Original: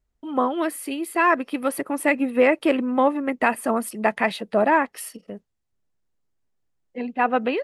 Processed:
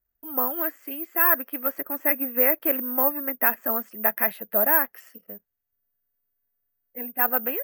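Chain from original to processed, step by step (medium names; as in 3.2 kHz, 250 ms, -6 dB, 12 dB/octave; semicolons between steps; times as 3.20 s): fifteen-band graphic EQ 630 Hz +4 dB, 1.6 kHz +10 dB, 4 kHz -9 dB, 10 kHz +4 dB; careless resampling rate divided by 3×, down filtered, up zero stuff; trim -10.5 dB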